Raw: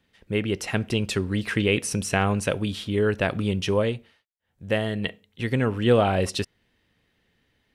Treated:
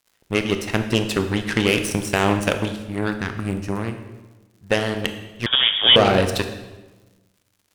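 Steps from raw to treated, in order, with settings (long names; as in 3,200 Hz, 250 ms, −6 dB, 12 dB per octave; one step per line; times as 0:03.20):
low-shelf EQ 160 Hz −3 dB
in parallel at +3 dB: brickwall limiter −14.5 dBFS, peak gain reduction 7.5 dB
0:02.76–0:04.70: on the sum: phaser with its sweep stopped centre 1,400 Hz, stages 4
surface crackle 160 per second −34 dBFS
dead-zone distortion −49.5 dBFS
harmonic generator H 3 −26 dB, 5 −34 dB, 7 −20 dB, 8 −28 dB, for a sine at −2.5 dBFS
on a send at −7 dB: convolution reverb RT60 1.2 s, pre-delay 20 ms
0:05.46–0:05.96: on the sum: voice inversion scrambler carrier 3,500 Hz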